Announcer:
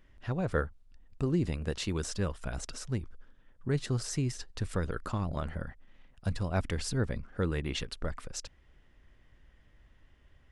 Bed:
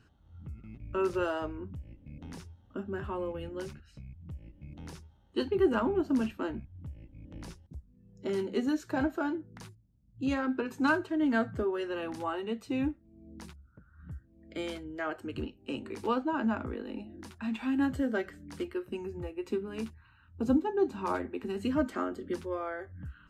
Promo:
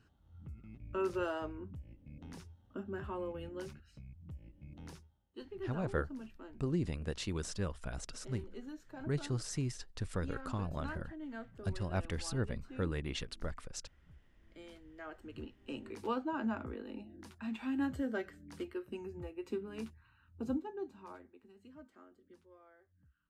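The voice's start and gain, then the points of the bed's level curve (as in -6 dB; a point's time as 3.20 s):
5.40 s, -5.0 dB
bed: 4.91 s -5 dB
5.32 s -17.5 dB
14.56 s -17.5 dB
15.79 s -6 dB
20.30 s -6 dB
21.55 s -26 dB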